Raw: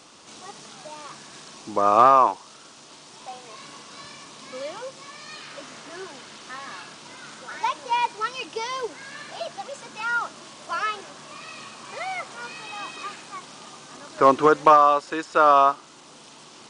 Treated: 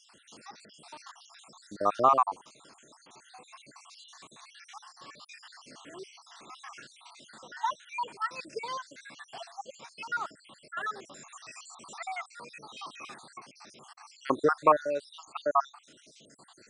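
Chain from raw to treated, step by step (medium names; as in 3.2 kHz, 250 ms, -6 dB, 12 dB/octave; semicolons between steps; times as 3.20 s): random holes in the spectrogram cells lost 66%; 11.12–12.06 s: peaking EQ 7.2 kHz +15 dB 0.26 oct; trim -5 dB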